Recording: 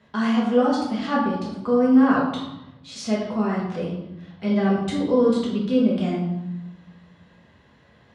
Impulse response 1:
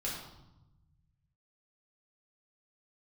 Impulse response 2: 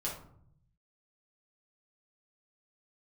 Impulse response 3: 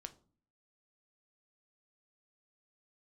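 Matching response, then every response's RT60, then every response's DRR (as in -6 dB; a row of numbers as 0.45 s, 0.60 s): 1; 0.90 s, 0.65 s, no single decay rate; -5.5 dB, -6.0 dB, 8.5 dB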